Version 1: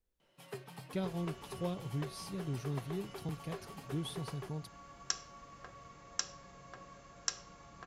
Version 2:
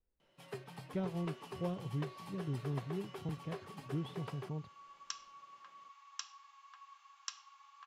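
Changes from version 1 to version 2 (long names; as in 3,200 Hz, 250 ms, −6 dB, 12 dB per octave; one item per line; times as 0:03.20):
speech: add high-frequency loss of the air 420 metres
second sound: add Chebyshev high-pass with heavy ripple 790 Hz, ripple 9 dB
master: add high-shelf EQ 9,700 Hz −9.5 dB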